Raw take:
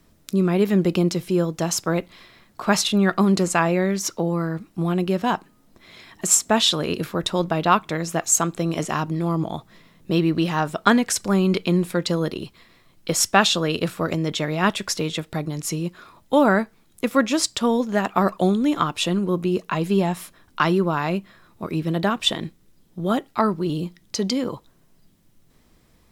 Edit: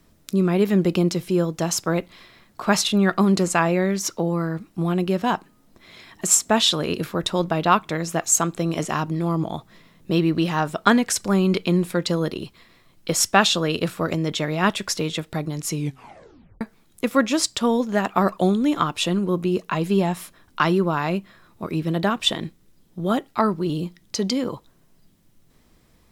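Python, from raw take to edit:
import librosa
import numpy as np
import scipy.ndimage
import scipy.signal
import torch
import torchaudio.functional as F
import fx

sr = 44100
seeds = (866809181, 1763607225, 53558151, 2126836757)

y = fx.edit(x, sr, fx.tape_stop(start_s=15.73, length_s=0.88), tone=tone)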